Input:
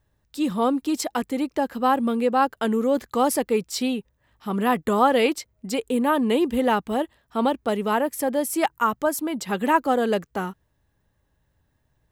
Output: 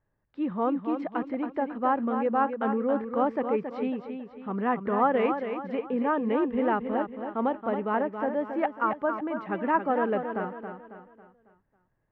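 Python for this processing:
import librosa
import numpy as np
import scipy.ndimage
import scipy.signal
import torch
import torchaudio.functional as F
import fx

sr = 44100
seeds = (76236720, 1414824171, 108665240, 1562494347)

y = scipy.signal.sosfilt(scipy.signal.butter(4, 2100.0, 'lowpass', fs=sr, output='sos'), x)
y = fx.peak_eq(y, sr, hz=64.0, db=-11.0, octaves=1.2)
y = fx.echo_feedback(y, sr, ms=274, feedback_pct=42, wet_db=-7.5)
y = y * librosa.db_to_amplitude(-5.0)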